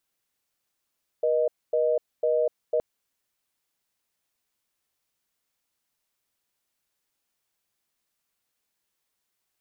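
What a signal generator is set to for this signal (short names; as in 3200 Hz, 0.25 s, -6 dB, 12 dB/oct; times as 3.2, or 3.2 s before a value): call progress tone reorder tone, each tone -23 dBFS 1.57 s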